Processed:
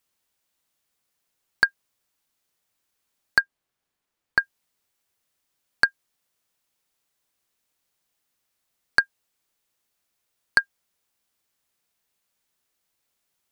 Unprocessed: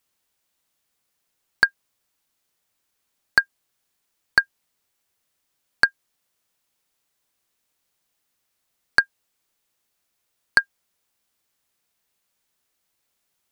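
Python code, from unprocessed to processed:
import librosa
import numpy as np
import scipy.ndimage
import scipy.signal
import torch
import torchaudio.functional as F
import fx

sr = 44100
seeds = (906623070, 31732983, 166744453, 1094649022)

y = fx.high_shelf(x, sr, hz=3500.0, db=-9.5, at=(3.41, 4.41))
y = y * 10.0 ** (-2.0 / 20.0)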